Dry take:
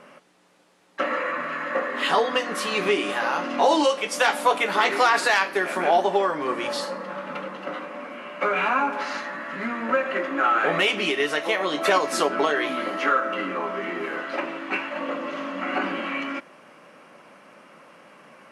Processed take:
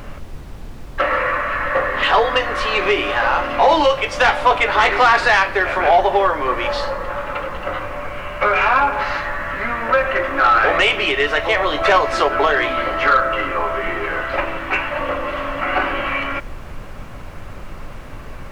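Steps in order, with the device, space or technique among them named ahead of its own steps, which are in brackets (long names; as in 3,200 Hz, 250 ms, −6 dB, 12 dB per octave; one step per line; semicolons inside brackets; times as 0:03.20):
aircraft cabin announcement (band-pass filter 460–3,300 Hz; soft clipping −14 dBFS, distortion −18 dB; brown noise bed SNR 12 dB)
level +9 dB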